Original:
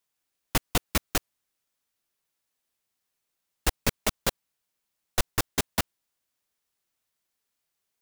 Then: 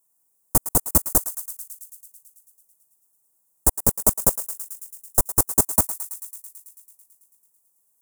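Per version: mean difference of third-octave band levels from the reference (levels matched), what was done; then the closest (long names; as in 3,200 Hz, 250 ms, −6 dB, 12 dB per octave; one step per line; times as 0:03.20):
8.5 dB: brickwall limiter −11.5 dBFS, peak gain reduction 3.5 dB
drawn EQ curve 1,000 Hz 0 dB, 3,100 Hz −27 dB, 8,300 Hz +10 dB
on a send: feedback echo with a high-pass in the loop 110 ms, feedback 76%, high-pass 1,200 Hz, level −12 dB
on the sum: level +5 dB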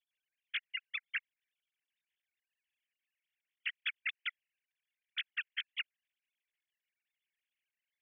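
32.0 dB: three sine waves on the formant tracks
Butterworth high-pass 1,700 Hz 48 dB per octave
brickwall limiter −20.5 dBFS, peak gain reduction 5 dB
level −5.5 dB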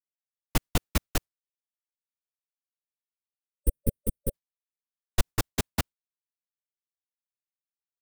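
5.5 dB: downward expander −28 dBFS
gain on a spectral selection 0:01.52–0:04.34, 560–8,400 Hz −24 dB
low-shelf EQ 230 Hz +8 dB
level −3.5 dB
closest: third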